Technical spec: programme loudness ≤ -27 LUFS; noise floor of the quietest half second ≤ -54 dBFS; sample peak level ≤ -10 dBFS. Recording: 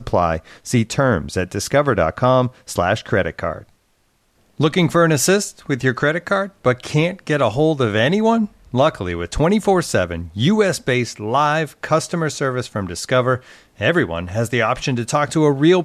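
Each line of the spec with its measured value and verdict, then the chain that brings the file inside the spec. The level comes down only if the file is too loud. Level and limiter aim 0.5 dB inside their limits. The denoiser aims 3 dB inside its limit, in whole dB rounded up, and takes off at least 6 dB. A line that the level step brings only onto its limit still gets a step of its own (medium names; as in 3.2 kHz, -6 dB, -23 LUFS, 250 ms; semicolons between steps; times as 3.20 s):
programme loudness -18.5 LUFS: fail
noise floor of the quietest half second -62 dBFS: pass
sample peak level -4.0 dBFS: fail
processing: trim -9 dB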